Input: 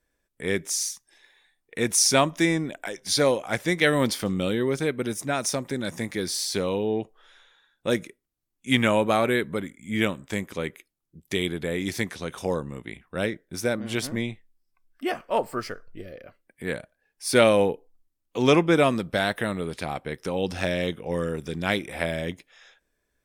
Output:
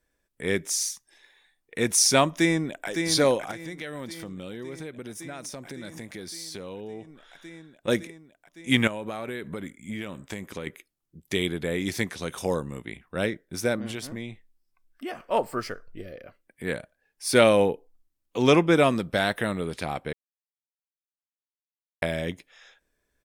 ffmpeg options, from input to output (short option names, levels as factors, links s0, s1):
-filter_complex "[0:a]asplit=2[s0][s1];[s1]afade=t=in:st=2.31:d=0.01,afade=t=out:st=2.88:d=0.01,aecho=0:1:560|1120|1680|2240|2800|3360|3920|4480|5040|5600|6160|6720:0.501187|0.40095|0.32076|0.256608|0.205286|0.164229|0.131383|0.105107|0.0840853|0.0672682|0.0538146|0.0430517[s2];[s0][s2]amix=inputs=2:normalize=0,asettb=1/sr,asplit=3[s3][s4][s5];[s3]atrim=end=3.514[s6];[s4]atrim=start=3.51:end=7.88,asetpts=PTS-STARTPTS,afade=t=in:d=0.004:c=qsin,afade=t=out:st=4.366:d=0.004:c=qsin,acompressor=threshold=0.0126:ratio=3:attack=3.2:release=140:knee=1:detection=peak[s7];[s5]atrim=start=7.876[s8];[s6][s7]acrossfade=d=0.004:c1=hsin:c2=qsin[s9];[s9][s8]acrossfade=d=0.004:c1=qsin:c2=hsin,asettb=1/sr,asplit=3[s10][s11][s12];[s10]atrim=end=8.874[s13];[s11]atrim=start=8.87:end=10.67,asetpts=PTS-STARTPTS,afade=t=in:d=0.004:c=qsin,afade=t=out:st=1.796:d=0.004:c=qsin,acompressor=threshold=0.0355:ratio=10:attack=3.2:release=140:knee=1:detection=peak[s14];[s12]atrim=start=10.666[s15];[s13][s14]acrossfade=d=0.004:c1=hsin:c2=qsin[s16];[s16][s15]acrossfade=d=0.004:c1=qsin:c2=hsin,asettb=1/sr,asplit=3[s17][s18][s19];[s17]atrim=end=12.174[s20];[s18]atrim=start=12.17:end=12.83,asetpts=PTS-STARTPTS,afade=t=in:d=0.004:c=qsin,afade=t=out:st=0.656:d=0.004:c=qsin,highshelf=f=5800:g=7[s21];[s19]atrim=start=12.826[s22];[s20][s21]acrossfade=d=0.004:c1=hsin:c2=qsin[s23];[s23][s22]acrossfade=d=0.004:c1=qsin:c2=hsin,asettb=1/sr,asplit=3[s24][s25][s26];[s24]atrim=end=13.914[s27];[s25]atrim=start=13.91:end=15.3,asetpts=PTS-STARTPTS,afade=t=in:d=0.004:c=qsin,afade=t=out:st=1.386:d=0.004:c=qsin,acompressor=threshold=0.0158:ratio=2:attack=3.2:release=140:knee=1:detection=peak[s28];[s26]atrim=start=15.296[s29];[s27][s28]acrossfade=d=0.004:c1=hsin:c2=qsin[s30];[s30][s29]acrossfade=d=0.004:c1=qsin:c2=hsin,asplit=3[s31][s32][s33];[s31]atrim=end=20.13,asetpts=PTS-STARTPTS,afade=t=out:st=20.126:d=0.004:c=hsin[s34];[s32]atrim=start=20.13:end=22.02,asetpts=PTS-STARTPTS,volume=0[s35];[s33]atrim=start=22.02,asetpts=PTS-STARTPTS,afade=t=in:d=0.004:c=hsin[s36];[s34][s35][s36]concat=n=3:v=0:a=1"